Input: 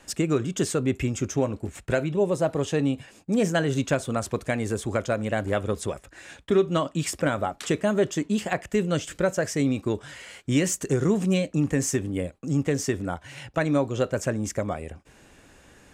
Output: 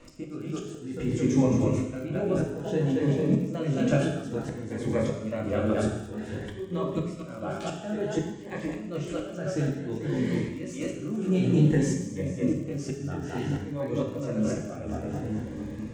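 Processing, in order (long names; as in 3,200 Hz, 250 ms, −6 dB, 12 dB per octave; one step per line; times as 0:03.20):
low-pass filter 7,200 Hz 12 dB per octave
de-essing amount 60%
high-shelf EQ 2,200 Hz −8.5 dB
echo with a time of its own for lows and highs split 340 Hz, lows 466 ms, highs 219 ms, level −6 dB
downward compressor 20 to 1, threshold −22 dBFS, peak gain reduction 7.5 dB
chorus effect 1.7 Hz, delay 18.5 ms, depth 5.1 ms
volume swells 663 ms
reverb whose tail is shaped and stops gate 290 ms falling, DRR 1 dB
surface crackle 38 per second −48 dBFS
phaser whose notches keep moving one way rising 0.56 Hz
level +7 dB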